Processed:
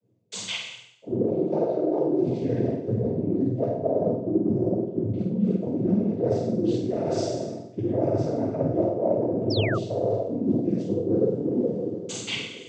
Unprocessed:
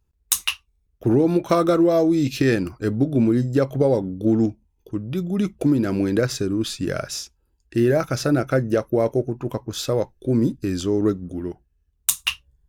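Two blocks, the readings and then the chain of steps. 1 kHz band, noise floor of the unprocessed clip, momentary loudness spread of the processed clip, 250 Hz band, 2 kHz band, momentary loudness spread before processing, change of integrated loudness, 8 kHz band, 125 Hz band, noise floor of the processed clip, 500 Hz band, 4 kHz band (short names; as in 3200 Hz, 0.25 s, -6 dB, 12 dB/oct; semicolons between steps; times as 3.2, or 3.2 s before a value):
-5.0 dB, -68 dBFS, 7 LU, -4.0 dB, -7.5 dB, 10 LU, -4.0 dB, under -10 dB, -4.0 dB, -46 dBFS, -2.5 dB, -5.0 dB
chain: flange 0.91 Hz, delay 4.8 ms, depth 9.1 ms, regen -59%; resonant low shelf 750 Hz +12.5 dB, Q 3; two-slope reverb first 0.72 s, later 3.1 s, from -18 dB, DRR -9.5 dB; reverse; compressor 12:1, threshold -14 dBFS, peak gain reduction 25 dB; reverse; noise vocoder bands 16; air absorption 70 m; on a send: flutter echo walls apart 8.3 m, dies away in 0.46 s; on the sum: painted sound fall, 9.5–9.78, 1100–5700 Hz -24 dBFS; gain -8 dB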